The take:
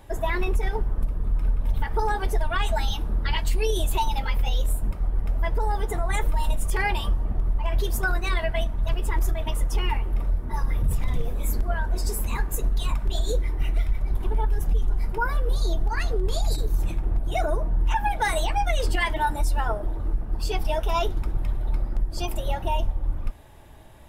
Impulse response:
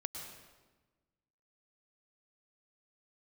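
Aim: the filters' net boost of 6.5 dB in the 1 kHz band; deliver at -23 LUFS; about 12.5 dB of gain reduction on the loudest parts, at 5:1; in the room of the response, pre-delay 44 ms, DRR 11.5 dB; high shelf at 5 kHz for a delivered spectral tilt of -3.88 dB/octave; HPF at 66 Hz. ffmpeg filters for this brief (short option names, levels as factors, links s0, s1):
-filter_complex "[0:a]highpass=66,equalizer=f=1000:t=o:g=7.5,highshelf=f=5000:g=8.5,acompressor=threshold=0.0398:ratio=5,asplit=2[s0][s1];[1:a]atrim=start_sample=2205,adelay=44[s2];[s1][s2]afir=irnorm=-1:irlink=0,volume=0.282[s3];[s0][s3]amix=inputs=2:normalize=0,volume=2.99"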